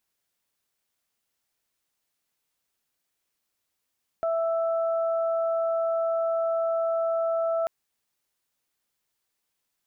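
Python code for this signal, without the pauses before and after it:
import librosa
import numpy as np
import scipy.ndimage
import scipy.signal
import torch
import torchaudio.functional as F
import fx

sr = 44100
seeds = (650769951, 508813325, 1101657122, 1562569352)

y = fx.additive_steady(sr, length_s=3.44, hz=661.0, level_db=-23, upper_db=(-11.0,))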